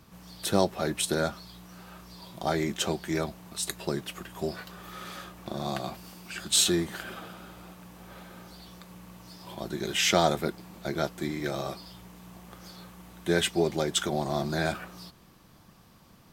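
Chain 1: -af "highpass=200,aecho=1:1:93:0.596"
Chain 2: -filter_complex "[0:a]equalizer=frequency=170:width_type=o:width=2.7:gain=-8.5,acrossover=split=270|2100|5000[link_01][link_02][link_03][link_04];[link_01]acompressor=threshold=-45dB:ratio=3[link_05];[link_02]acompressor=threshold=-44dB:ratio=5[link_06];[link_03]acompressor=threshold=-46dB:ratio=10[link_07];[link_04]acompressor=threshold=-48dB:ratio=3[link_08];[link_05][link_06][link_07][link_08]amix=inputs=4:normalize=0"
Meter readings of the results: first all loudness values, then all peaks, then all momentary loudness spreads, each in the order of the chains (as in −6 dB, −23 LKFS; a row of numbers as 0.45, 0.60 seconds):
−28.5, −43.0 LKFS; −8.0, −21.5 dBFS; 24, 12 LU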